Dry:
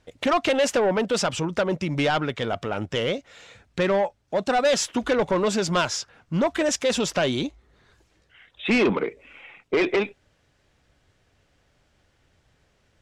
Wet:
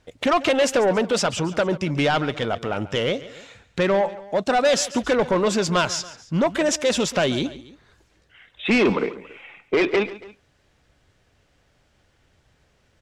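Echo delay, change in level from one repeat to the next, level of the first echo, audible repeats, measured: 0.14 s, -5.0 dB, -17.0 dB, 2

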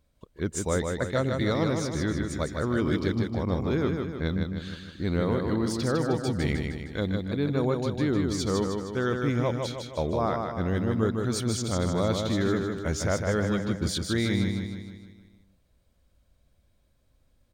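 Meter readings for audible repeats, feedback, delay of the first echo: 6, 52%, 0.155 s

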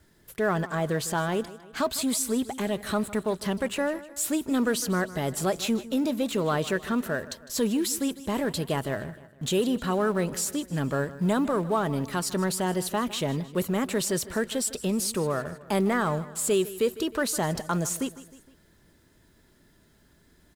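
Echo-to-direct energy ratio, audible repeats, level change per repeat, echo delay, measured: -16.0 dB, 3, -6.0 dB, 0.155 s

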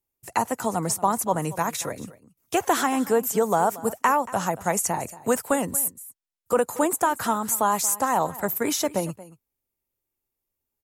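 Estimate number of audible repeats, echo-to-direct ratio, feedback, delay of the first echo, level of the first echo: 1, -18.0 dB, no steady repeat, 0.23 s, -18.0 dB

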